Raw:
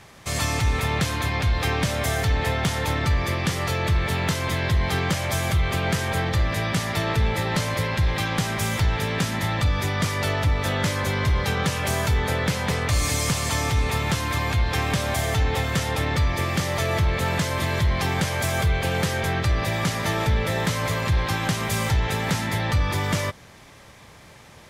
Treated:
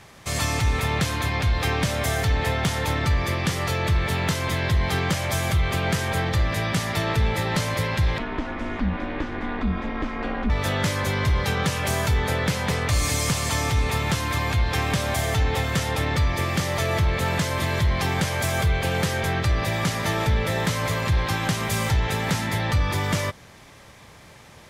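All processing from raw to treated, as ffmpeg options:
-filter_complex "[0:a]asettb=1/sr,asplit=3[a][b][c];[a]atrim=end=8.184[d];[b]atrim=start=8.18:end=10.5,asetpts=PTS-STARTPTS,afade=t=in:d=0.004:c=qsin,afade=t=out:st=2.316:d=0.004:c=qsin,lowpass=2k,aeval=exprs='val(0)*sin(2*PI*130*n/s)':c=same[e];[c]atrim=start=10.496[f];[d][e]acrossfade=d=0.004:c1=hsin:c2=qsin[g];[g][f]acrossfade=d=0.004:c1=qsin:c2=hsin"

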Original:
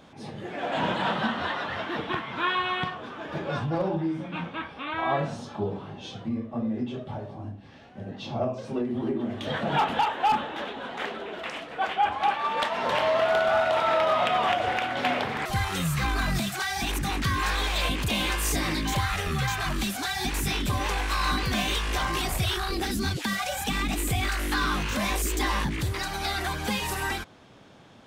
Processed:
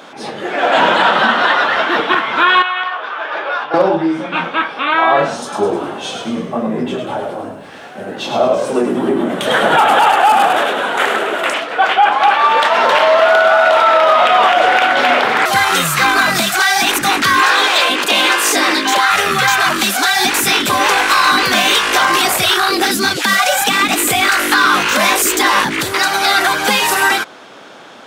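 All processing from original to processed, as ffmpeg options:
-filter_complex "[0:a]asettb=1/sr,asplit=3[a][b][c];[a]atrim=end=2.624[d];[b]atrim=start=2.62:end=3.74,asetpts=PTS-STARTPTS,afade=t=in:d=0.004:c=qsin,afade=t=out:st=1.116:d=0.004:c=qsin,highpass=700,lowpass=3.4k,acompressor=threshold=-33dB:ratio=5:attack=3.2:release=140:knee=1:detection=peak[e];[c]atrim=start=3.736[f];[d][e]acrossfade=d=0.004:c1=hsin:c2=qsin[g];[g][f]acrossfade=d=0.004:c1=qsin:c2=hsin,asettb=1/sr,asplit=3[h][i][j];[h]atrim=end=5.424[k];[i]atrim=start=5.42:end=11.54,asetpts=PTS-STARTPTS,afade=t=in:d=0.004:c=qsin,afade=t=out:st=6.116:d=0.004:c=qsin,highshelf=f=6.8k:t=q:w=1.5:g=9,asplit=7[l][m][n][o][p][q][r];[m]adelay=103,afreqshift=-60,volume=-5dB[s];[n]adelay=206,afreqshift=-120,volume=-11dB[t];[o]adelay=309,afreqshift=-180,volume=-17dB[u];[p]adelay=412,afreqshift=-240,volume=-23.1dB[v];[q]adelay=515,afreqshift=-300,volume=-29.1dB[w];[r]adelay=618,afreqshift=-360,volume=-35.1dB[x];[l][s][t][u][v][w][x]amix=inputs=7:normalize=0,atrim=end_sample=269892[y];[j]atrim=start=11.536[z];[k][y]acrossfade=d=0.004:c1=hsin:c2=qsin[aa];[aa][z]acrossfade=d=0.004:c1=qsin:c2=hsin,asettb=1/sr,asplit=3[ab][ac][ad];[ab]atrim=end=17.404[ae];[ac]atrim=start=17.4:end=19.11,asetpts=PTS-STARTPTS,afade=t=in:d=0.004:c=qsin,afade=t=out:st=1.706:d=0.004:c=qsin,highpass=f=240:w=0.5412,highpass=f=240:w=1.3066,highshelf=f=9.2k:g=-8,bandreject=f=2.2k:w=25[af];[ad]atrim=start=19.106[ag];[ae][af]acrossfade=d=0.004:c1=hsin:c2=qsin[ah];[ah][ag]acrossfade=d=0.004:c1=qsin:c2=hsin,highpass=360,equalizer=f=1.4k:t=o:w=0.32:g=5,alimiter=level_in=18dB:limit=-1dB:release=50:level=0:latency=1,volume=-1dB"

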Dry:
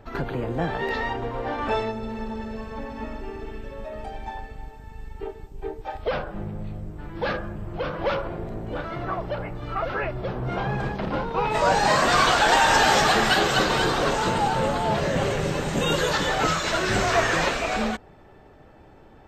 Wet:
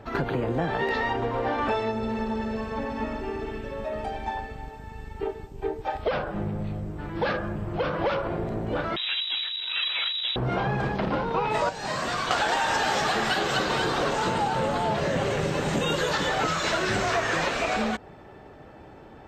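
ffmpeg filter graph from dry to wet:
-filter_complex "[0:a]asettb=1/sr,asplit=3[a][b][c];[a]atrim=end=8.964[d];[b]atrim=start=8.96:end=10.36,asetpts=PTS-STARTPTS,afade=t=in:d=0.004:c=qsin,afade=t=out:st=1.396:d=0.004:c=qsin,aeval=exprs='max(val(0),0)':c=same,lowpass=f=3.3k:t=q:w=0.5098,lowpass=f=3.3k:t=q:w=0.6013,lowpass=f=3.3k:t=q:w=0.9,lowpass=f=3.3k:t=q:w=2.563,afreqshift=-3900[e];[c]atrim=start=10.356[f];[d][e]acrossfade=d=0.004:c1=hsin:c2=qsin[g];[g][f]acrossfade=d=0.004:c1=qsin:c2=hsin,asettb=1/sr,asplit=3[h][i][j];[h]atrim=end=11.694[k];[i]atrim=start=11.69:end=12.31,asetpts=PTS-STARTPTS,afade=t=in:d=0.004:c=qsin,afade=t=out:st=0.616:d=0.004:c=qsin,acrossover=split=200|2800[l][m][n];[l]acompressor=threshold=-42dB:ratio=4[o];[m]acompressor=threshold=-34dB:ratio=4[p];[n]acompressor=threshold=-42dB:ratio=4[q];[o][p][q]amix=inputs=3:normalize=0,bandreject=f=830:w=25[r];[j]atrim=start=12.306[s];[k][r]acrossfade=d=0.004:c1=hsin:c2=qsin[t];[t][s]acrossfade=d=0.004:c1=qsin:c2=hsin,highpass=f=77:p=1,highshelf=f=10k:g=-7,acompressor=threshold=-27dB:ratio=6,volume=4.5dB"

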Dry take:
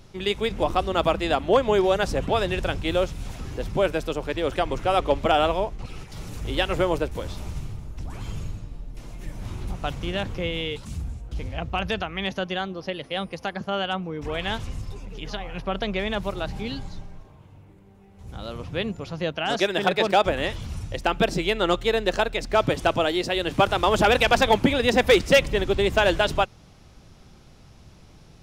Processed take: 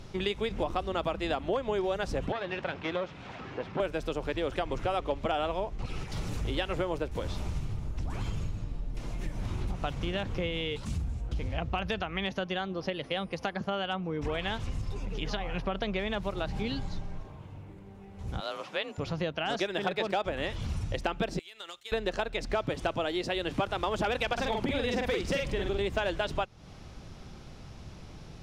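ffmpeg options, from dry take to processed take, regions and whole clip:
-filter_complex "[0:a]asettb=1/sr,asplit=3[a][b][c];[a]atrim=end=2.324[d];[b]atrim=start=2.32:end=3.8,asetpts=PTS-STARTPTS,afade=t=in:d=0.004:c=qsin,afade=t=out:st=1.476:d=0.004:c=qsin,lowshelf=f=420:g=-10.5,aeval=exprs='clip(val(0),-1,0.0178)':c=same,highpass=130,lowpass=2.6k[e];[c]atrim=start=3.796[f];[d][e]acrossfade=d=0.004:c1=hsin:c2=qsin[g];[g][f]acrossfade=d=0.004:c1=qsin:c2=hsin,asettb=1/sr,asplit=3[h][i][j];[h]atrim=end=18.404[k];[i]atrim=start=18.4:end=18.98,asetpts=PTS-STARTPTS,afade=t=in:d=0.004:c=qsin,afade=t=out:st=0.576:d=0.004:c=qsin,afreqshift=39,highpass=630[l];[j]atrim=start=18.976[m];[k][l]acrossfade=d=0.004:c1=hsin:c2=qsin[n];[n][m]acrossfade=d=0.004:c1=qsin:c2=hsin,asettb=1/sr,asplit=3[o][p][q];[o]atrim=end=21.394[r];[p]atrim=start=21.39:end=21.92,asetpts=PTS-STARTPTS,afade=t=in:d=0.004:c=qsin,afade=t=out:st=0.526:d=0.004:c=qsin,agate=range=-33dB:threshold=-26dB:ratio=3:release=100:detection=peak,aderivative,acompressor=threshold=-41dB:ratio=10:attack=3.2:release=140:knee=1:detection=peak[s];[q]atrim=start=21.916[t];[r][s]acrossfade=d=0.004:c1=hsin:c2=qsin[u];[u][t]acrossfade=d=0.004:c1=qsin:c2=hsin,asettb=1/sr,asplit=3[v][w][x];[v]atrim=end=24.334[y];[w]atrim=start=24.33:end=25.81,asetpts=PTS-STARTPTS,afade=t=in:d=0.004:c=qsin,afade=t=out:st=1.476:d=0.004:c=qsin,acompressor=threshold=-19dB:ratio=4:attack=3.2:release=140:knee=1:detection=peak,asplit=2[z][aa];[aa]adelay=46,volume=-3dB[ab];[z][ab]amix=inputs=2:normalize=0,atrim=end_sample=65268[ac];[x]atrim=start=25.806[ad];[y][ac]acrossfade=d=0.004:c1=hsin:c2=qsin[ae];[ae][ad]acrossfade=d=0.004:c1=qsin:c2=hsin,highshelf=f=9.9k:g=-11.5,acompressor=threshold=-33dB:ratio=4,volume=3.5dB"

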